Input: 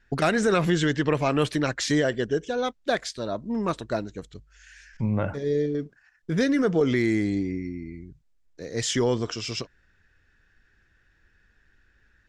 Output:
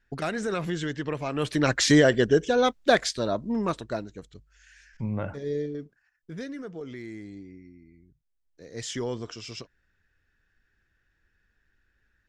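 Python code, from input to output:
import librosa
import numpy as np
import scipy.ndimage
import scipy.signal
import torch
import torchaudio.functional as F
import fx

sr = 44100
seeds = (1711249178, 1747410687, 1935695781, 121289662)

y = fx.gain(x, sr, db=fx.line((1.32, -7.5), (1.73, 5.0), (3.08, 5.0), (4.09, -5.0), (5.55, -5.0), (6.7, -16.5), (7.9, -16.5), (8.82, -8.0)))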